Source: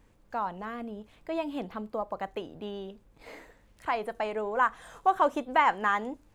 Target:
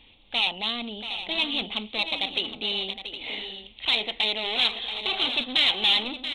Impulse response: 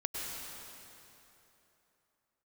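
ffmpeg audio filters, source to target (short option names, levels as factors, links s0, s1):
-filter_complex "[0:a]afftfilt=real='re*lt(hypot(re,im),0.282)':imag='im*lt(hypot(re,im),0.282)':win_size=1024:overlap=0.75,equalizer=f=160:t=o:w=0.33:g=-8,equalizer=f=250:t=o:w=0.33:g=5,equalizer=f=800:t=o:w=0.33:g=8,acontrast=28,aresample=8000,volume=25.1,asoftclip=hard,volume=0.0398,aresample=44100,aexciter=amount=13.2:drive=9.2:freq=2600,asplit=2[s0][s1];[s1]aecho=0:1:682|764:0.299|0.251[s2];[s0][s2]amix=inputs=2:normalize=0,volume=0.631"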